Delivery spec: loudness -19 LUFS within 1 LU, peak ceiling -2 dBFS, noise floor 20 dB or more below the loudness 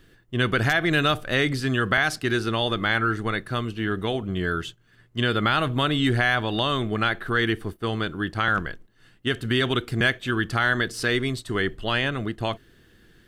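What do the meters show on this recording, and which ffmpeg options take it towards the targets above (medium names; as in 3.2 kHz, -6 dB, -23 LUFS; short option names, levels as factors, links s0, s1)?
loudness -24.0 LUFS; peak level -9.0 dBFS; loudness target -19.0 LUFS
-> -af "volume=1.78"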